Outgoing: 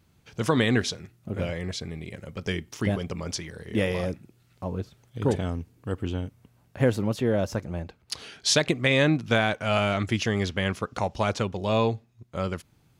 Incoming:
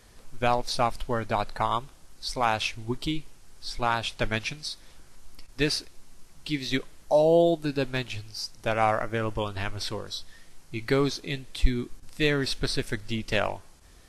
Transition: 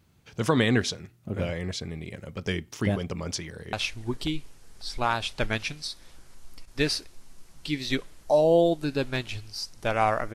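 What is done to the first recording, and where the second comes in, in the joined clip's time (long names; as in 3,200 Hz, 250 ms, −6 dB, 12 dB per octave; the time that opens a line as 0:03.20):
outgoing
0:03.48–0:03.73: delay throw 540 ms, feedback 30%, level −14.5 dB
0:03.73: continue with incoming from 0:02.54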